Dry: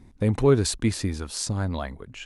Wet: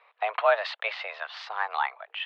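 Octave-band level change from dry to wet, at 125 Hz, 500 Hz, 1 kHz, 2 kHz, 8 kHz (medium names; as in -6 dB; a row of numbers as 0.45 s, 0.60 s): under -40 dB, -4.0 dB, +9.0 dB, +9.0 dB, under -30 dB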